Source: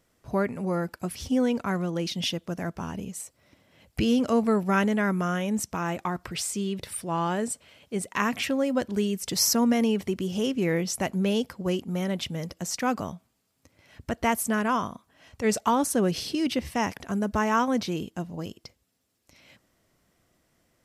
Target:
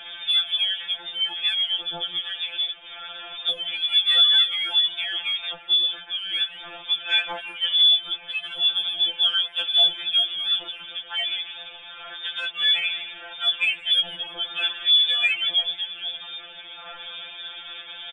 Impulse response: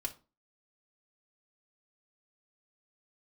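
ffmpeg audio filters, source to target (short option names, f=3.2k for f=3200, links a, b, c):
-filter_complex "[0:a]aeval=exprs='val(0)+0.5*0.0335*sgn(val(0))':c=same,aecho=1:1:5.4:0.69,lowpass=f=2.7k:t=q:w=0.5098,lowpass=f=2.7k:t=q:w=0.6013,lowpass=f=2.7k:t=q:w=0.9,lowpass=f=2.7k:t=q:w=2.563,afreqshift=-3200,acontrast=24,asplit=4[a][b][c][d];[b]adelay=196,afreqshift=-100,volume=-16dB[e];[c]adelay=392,afreqshift=-200,volume=-25.1dB[f];[d]adelay=588,afreqshift=-300,volume=-34.2dB[g];[a][e][f][g]amix=inputs=4:normalize=0,asplit=2[h][i];[1:a]atrim=start_sample=2205[j];[i][j]afir=irnorm=-1:irlink=0,volume=-19.5dB[k];[h][k]amix=inputs=2:normalize=0,asetrate=50715,aresample=44100,afftfilt=real='re*2.83*eq(mod(b,8),0)':imag='im*2.83*eq(mod(b,8),0)':win_size=2048:overlap=0.75,volume=-6dB"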